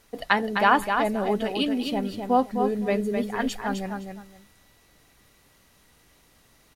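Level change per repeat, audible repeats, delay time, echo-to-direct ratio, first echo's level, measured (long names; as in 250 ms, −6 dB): −14.0 dB, 2, 257 ms, −6.0 dB, −6.0 dB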